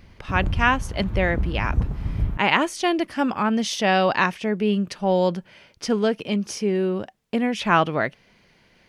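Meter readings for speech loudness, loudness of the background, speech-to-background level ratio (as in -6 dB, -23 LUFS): -23.0 LUFS, -28.5 LUFS, 5.5 dB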